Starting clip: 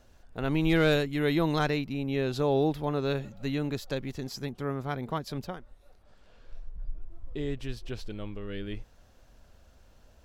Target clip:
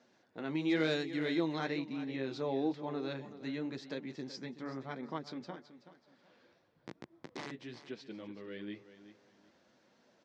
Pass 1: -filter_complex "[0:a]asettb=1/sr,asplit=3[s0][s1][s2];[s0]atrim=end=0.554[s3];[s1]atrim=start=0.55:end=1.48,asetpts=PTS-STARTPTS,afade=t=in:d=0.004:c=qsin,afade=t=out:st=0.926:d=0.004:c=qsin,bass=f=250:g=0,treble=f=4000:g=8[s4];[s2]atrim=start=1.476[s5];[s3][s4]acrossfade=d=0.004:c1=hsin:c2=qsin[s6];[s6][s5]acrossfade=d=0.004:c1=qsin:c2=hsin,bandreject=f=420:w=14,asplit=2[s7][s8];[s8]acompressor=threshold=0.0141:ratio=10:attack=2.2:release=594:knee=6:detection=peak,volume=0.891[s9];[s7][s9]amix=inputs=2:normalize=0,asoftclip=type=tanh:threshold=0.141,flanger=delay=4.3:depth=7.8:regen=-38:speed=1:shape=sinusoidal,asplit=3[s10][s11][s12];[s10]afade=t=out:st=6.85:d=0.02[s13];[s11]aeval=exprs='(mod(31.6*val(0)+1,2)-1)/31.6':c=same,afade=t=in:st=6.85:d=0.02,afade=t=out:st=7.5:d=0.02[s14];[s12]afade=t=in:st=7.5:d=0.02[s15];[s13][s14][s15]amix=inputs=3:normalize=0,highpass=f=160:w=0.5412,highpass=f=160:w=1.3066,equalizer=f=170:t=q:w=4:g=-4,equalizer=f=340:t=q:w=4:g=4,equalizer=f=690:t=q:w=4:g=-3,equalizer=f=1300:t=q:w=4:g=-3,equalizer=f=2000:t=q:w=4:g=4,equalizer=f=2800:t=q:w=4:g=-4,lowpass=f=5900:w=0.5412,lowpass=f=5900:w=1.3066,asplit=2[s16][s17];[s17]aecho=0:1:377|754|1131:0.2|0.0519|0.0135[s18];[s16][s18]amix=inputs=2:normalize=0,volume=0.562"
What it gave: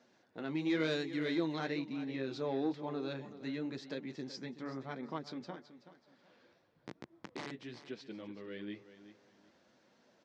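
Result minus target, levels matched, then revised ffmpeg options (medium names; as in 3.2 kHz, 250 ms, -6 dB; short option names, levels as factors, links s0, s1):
saturation: distortion +18 dB
-filter_complex "[0:a]asettb=1/sr,asplit=3[s0][s1][s2];[s0]atrim=end=0.554[s3];[s1]atrim=start=0.55:end=1.48,asetpts=PTS-STARTPTS,afade=t=in:d=0.004:c=qsin,afade=t=out:st=0.926:d=0.004:c=qsin,bass=f=250:g=0,treble=f=4000:g=8[s4];[s2]atrim=start=1.476[s5];[s3][s4]acrossfade=d=0.004:c1=hsin:c2=qsin[s6];[s6][s5]acrossfade=d=0.004:c1=qsin:c2=hsin,bandreject=f=420:w=14,asplit=2[s7][s8];[s8]acompressor=threshold=0.0141:ratio=10:attack=2.2:release=594:knee=6:detection=peak,volume=0.891[s9];[s7][s9]amix=inputs=2:normalize=0,asoftclip=type=tanh:threshold=0.473,flanger=delay=4.3:depth=7.8:regen=-38:speed=1:shape=sinusoidal,asplit=3[s10][s11][s12];[s10]afade=t=out:st=6.85:d=0.02[s13];[s11]aeval=exprs='(mod(31.6*val(0)+1,2)-1)/31.6':c=same,afade=t=in:st=6.85:d=0.02,afade=t=out:st=7.5:d=0.02[s14];[s12]afade=t=in:st=7.5:d=0.02[s15];[s13][s14][s15]amix=inputs=3:normalize=0,highpass=f=160:w=0.5412,highpass=f=160:w=1.3066,equalizer=f=170:t=q:w=4:g=-4,equalizer=f=340:t=q:w=4:g=4,equalizer=f=690:t=q:w=4:g=-3,equalizer=f=1300:t=q:w=4:g=-3,equalizer=f=2000:t=q:w=4:g=4,equalizer=f=2800:t=q:w=4:g=-4,lowpass=f=5900:w=0.5412,lowpass=f=5900:w=1.3066,asplit=2[s16][s17];[s17]aecho=0:1:377|754|1131:0.2|0.0519|0.0135[s18];[s16][s18]amix=inputs=2:normalize=0,volume=0.562"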